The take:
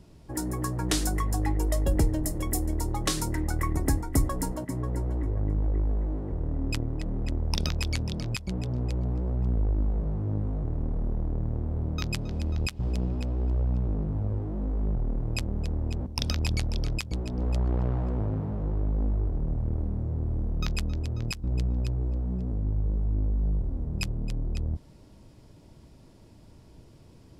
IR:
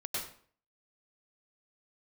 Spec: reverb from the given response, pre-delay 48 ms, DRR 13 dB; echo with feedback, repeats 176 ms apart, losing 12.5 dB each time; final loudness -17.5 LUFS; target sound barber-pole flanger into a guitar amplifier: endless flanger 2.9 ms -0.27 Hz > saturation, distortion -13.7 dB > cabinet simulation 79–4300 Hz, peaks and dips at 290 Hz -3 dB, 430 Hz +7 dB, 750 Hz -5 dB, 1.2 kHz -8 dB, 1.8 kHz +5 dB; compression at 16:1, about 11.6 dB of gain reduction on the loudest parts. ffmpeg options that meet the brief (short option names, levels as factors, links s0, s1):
-filter_complex "[0:a]acompressor=threshold=0.0316:ratio=16,aecho=1:1:176|352|528:0.237|0.0569|0.0137,asplit=2[s0][s1];[1:a]atrim=start_sample=2205,adelay=48[s2];[s1][s2]afir=irnorm=-1:irlink=0,volume=0.158[s3];[s0][s3]amix=inputs=2:normalize=0,asplit=2[s4][s5];[s5]adelay=2.9,afreqshift=-0.27[s6];[s4][s6]amix=inputs=2:normalize=1,asoftclip=threshold=0.02,highpass=79,equalizer=f=290:t=q:w=4:g=-3,equalizer=f=430:t=q:w=4:g=7,equalizer=f=750:t=q:w=4:g=-5,equalizer=f=1200:t=q:w=4:g=-8,equalizer=f=1800:t=q:w=4:g=5,lowpass=f=4300:w=0.5412,lowpass=f=4300:w=1.3066,volume=22.4"